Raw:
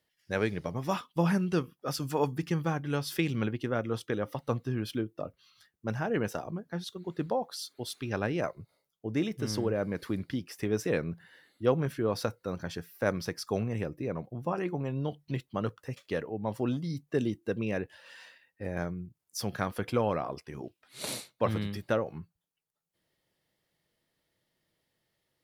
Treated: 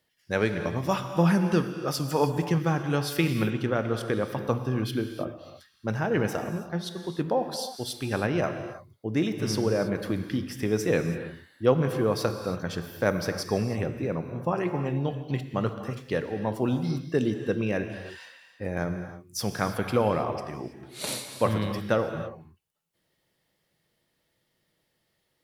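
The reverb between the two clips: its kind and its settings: non-linear reverb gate 0.35 s flat, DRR 7 dB; gain +4 dB

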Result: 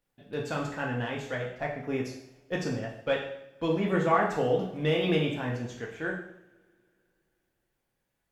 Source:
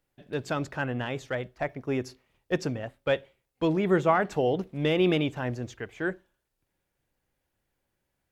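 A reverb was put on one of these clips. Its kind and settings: two-slope reverb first 0.67 s, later 2.9 s, from -27 dB, DRR -2 dB; gain -4.5 dB

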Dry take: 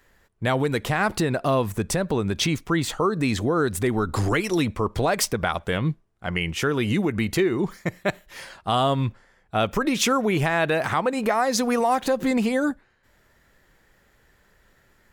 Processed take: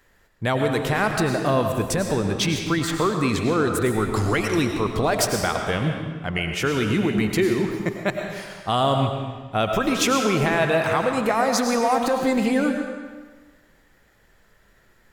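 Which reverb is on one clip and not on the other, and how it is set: digital reverb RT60 1.4 s, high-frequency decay 0.9×, pre-delay 65 ms, DRR 3.5 dB

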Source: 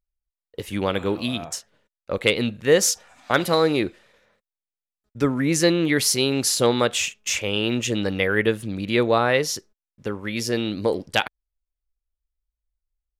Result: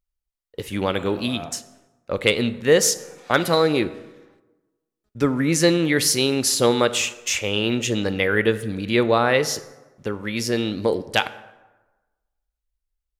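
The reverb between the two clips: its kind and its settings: plate-style reverb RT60 1.2 s, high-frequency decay 0.55×, pre-delay 0 ms, DRR 13 dB; gain +1 dB

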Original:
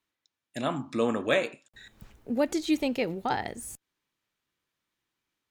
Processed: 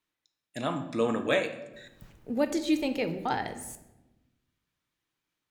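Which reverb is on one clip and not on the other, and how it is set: shoebox room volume 450 m³, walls mixed, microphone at 0.49 m; gain -1.5 dB

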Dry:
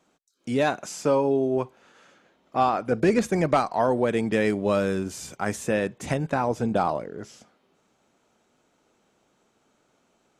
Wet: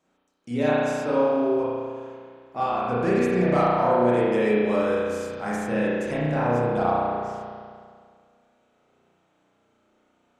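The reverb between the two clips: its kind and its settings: spring tank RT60 2 s, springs 33 ms, chirp 50 ms, DRR -8.5 dB; gain -8 dB

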